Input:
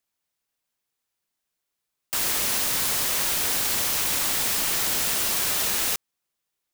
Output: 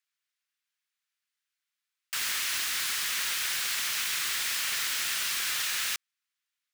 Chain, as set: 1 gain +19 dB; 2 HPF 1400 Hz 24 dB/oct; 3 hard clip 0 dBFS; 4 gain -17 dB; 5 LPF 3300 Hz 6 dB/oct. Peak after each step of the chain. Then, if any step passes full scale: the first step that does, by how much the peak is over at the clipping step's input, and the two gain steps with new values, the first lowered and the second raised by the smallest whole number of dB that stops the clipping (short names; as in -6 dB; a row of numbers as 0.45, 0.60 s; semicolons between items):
+8.0, +7.5, 0.0, -17.0, -19.5 dBFS; step 1, 7.5 dB; step 1 +11 dB, step 4 -9 dB